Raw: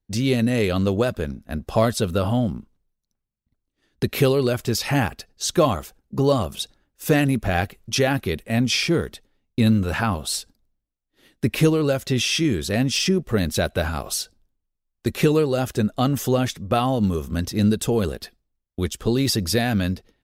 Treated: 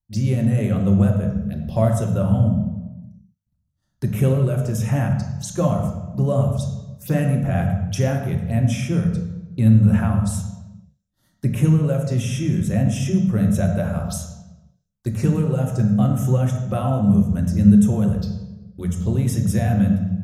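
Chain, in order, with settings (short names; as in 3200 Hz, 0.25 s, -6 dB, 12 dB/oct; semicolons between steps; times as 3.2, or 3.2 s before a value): tone controls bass +2 dB, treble +4 dB; envelope phaser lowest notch 410 Hz, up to 4500 Hz, full sweep at -20.5 dBFS; on a send: reverb RT60 1.1 s, pre-delay 5 ms, DRR 1 dB; on the sum: gain -7.5 dB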